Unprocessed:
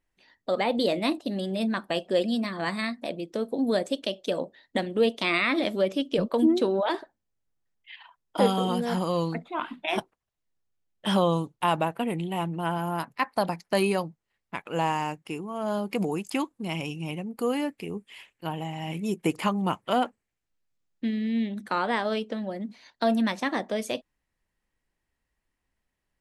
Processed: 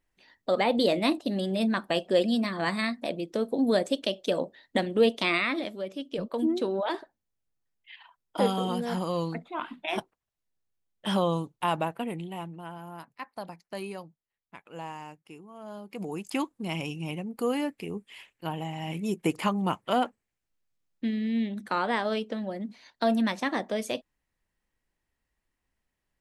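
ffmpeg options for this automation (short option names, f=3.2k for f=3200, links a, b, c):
-af "volume=21dB,afade=t=out:st=5.17:d=0.59:silence=0.251189,afade=t=in:st=5.76:d=1.17:silence=0.398107,afade=t=out:st=11.87:d=0.81:silence=0.316228,afade=t=in:st=15.91:d=0.5:silence=0.251189"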